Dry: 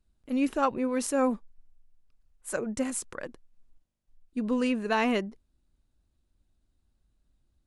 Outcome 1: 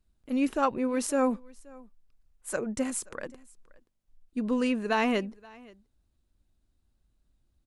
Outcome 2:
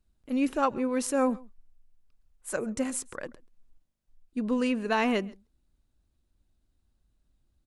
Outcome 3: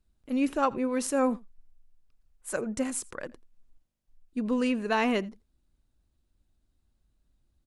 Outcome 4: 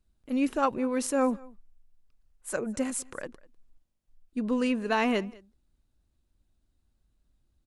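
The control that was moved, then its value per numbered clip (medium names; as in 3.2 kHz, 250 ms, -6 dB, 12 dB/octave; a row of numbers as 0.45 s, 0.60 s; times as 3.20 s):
delay, time: 527 ms, 134 ms, 84 ms, 200 ms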